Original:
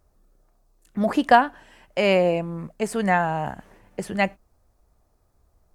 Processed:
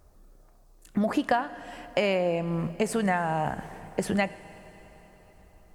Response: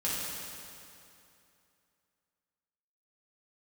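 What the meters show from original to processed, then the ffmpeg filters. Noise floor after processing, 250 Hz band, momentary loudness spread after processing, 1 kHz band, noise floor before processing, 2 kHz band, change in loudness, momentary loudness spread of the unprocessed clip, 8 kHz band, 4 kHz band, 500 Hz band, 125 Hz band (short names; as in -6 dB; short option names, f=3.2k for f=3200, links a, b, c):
-57 dBFS, -3.0 dB, 13 LU, -7.5 dB, -66 dBFS, -6.0 dB, -5.5 dB, 16 LU, 0.0 dB, -5.0 dB, -5.0 dB, -1.5 dB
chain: -filter_complex "[0:a]acompressor=threshold=-29dB:ratio=6,asplit=2[a][b];[1:a]atrim=start_sample=2205,asetrate=25578,aresample=44100[c];[b][c]afir=irnorm=-1:irlink=0,volume=-25dB[d];[a][d]amix=inputs=2:normalize=0,volume=5.5dB"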